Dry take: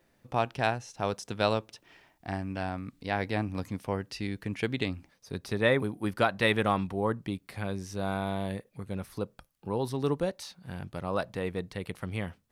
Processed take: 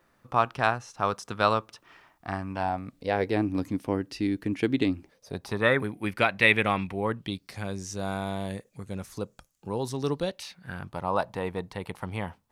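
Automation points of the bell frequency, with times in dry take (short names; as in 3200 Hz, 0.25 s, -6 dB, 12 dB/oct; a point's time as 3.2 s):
bell +12 dB 0.65 oct
2.39 s 1200 Hz
3.52 s 300 Hz
4.92 s 300 Hz
5.97 s 2300 Hz
7.09 s 2300 Hz
7.6 s 6900 Hz
9.94 s 6900 Hz
10.97 s 900 Hz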